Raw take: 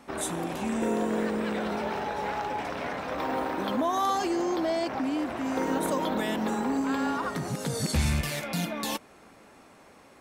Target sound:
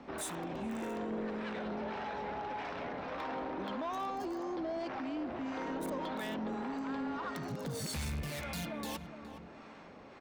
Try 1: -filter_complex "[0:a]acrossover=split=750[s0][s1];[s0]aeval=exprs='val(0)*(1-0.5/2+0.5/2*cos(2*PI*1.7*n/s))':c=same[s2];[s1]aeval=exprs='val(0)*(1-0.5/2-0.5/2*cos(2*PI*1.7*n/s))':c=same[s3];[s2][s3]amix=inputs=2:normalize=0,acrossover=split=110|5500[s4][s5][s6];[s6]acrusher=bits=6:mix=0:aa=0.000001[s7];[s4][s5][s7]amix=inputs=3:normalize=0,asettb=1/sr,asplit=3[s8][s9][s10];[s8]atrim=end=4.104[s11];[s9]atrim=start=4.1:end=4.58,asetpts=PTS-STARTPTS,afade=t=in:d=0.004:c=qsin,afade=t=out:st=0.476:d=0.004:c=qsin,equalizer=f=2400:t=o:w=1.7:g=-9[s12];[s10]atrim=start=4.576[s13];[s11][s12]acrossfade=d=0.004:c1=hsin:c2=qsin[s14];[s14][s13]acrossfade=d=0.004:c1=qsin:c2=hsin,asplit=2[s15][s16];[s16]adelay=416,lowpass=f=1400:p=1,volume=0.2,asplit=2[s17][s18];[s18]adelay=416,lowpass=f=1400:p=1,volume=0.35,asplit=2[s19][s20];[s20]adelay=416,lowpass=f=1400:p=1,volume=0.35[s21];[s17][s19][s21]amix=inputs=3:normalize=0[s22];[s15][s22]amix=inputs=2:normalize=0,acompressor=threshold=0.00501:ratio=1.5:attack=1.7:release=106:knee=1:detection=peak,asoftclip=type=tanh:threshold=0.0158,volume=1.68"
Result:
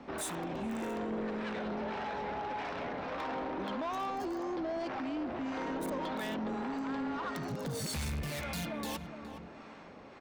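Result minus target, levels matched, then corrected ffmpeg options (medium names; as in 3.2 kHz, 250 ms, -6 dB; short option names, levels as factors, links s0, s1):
compression: peak gain reduction -3 dB
-filter_complex "[0:a]acrossover=split=750[s0][s1];[s0]aeval=exprs='val(0)*(1-0.5/2+0.5/2*cos(2*PI*1.7*n/s))':c=same[s2];[s1]aeval=exprs='val(0)*(1-0.5/2-0.5/2*cos(2*PI*1.7*n/s))':c=same[s3];[s2][s3]amix=inputs=2:normalize=0,acrossover=split=110|5500[s4][s5][s6];[s6]acrusher=bits=6:mix=0:aa=0.000001[s7];[s4][s5][s7]amix=inputs=3:normalize=0,asettb=1/sr,asplit=3[s8][s9][s10];[s8]atrim=end=4.104[s11];[s9]atrim=start=4.1:end=4.58,asetpts=PTS-STARTPTS,afade=t=in:d=0.004:c=qsin,afade=t=out:st=0.476:d=0.004:c=qsin,equalizer=f=2400:t=o:w=1.7:g=-9[s12];[s10]atrim=start=4.576[s13];[s11][s12]acrossfade=d=0.004:c1=hsin:c2=qsin[s14];[s14][s13]acrossfade=d=0.004:c1=qsin:c2=hsin,asplit=2[s15][s16];[s16]adelay=416,lowpass=f=1400:p=1,volume=0.2,asplit=2[s17][s18];[s18]adelay=416,lowpass=f=1400:p=1,volume=0.35,asplit=2[s19][s20];[s20]adelay=416,lowpass=f=1400:p=1,volume=0.35[s21];[s17][s19][s21]amix=inputs=3:normalize=0[s22];[s15][s22]amix=inputs=2:normalize=0,acompressor=threshold=0.00188:ratio=1.5:attack=1.7:release=106:knee=1:detection=peak,asoftclip=type=tanh:threshold=0.0158,volume=1.68"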